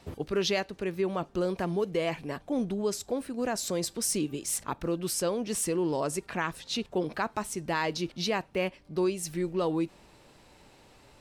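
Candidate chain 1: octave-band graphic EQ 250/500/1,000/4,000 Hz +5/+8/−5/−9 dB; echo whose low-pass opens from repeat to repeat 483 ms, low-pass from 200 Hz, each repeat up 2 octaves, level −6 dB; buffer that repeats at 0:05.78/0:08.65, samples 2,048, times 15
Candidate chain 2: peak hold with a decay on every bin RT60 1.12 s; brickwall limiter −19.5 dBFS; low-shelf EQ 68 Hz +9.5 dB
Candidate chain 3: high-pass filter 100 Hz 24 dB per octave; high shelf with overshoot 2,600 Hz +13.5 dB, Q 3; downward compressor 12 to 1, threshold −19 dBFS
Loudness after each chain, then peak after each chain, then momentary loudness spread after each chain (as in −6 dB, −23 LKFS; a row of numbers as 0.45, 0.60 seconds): −25.0, −29.0, −25.5 LKFS; −11.0, −17.5, −6.5 dBFS; 8, 2, 12 LU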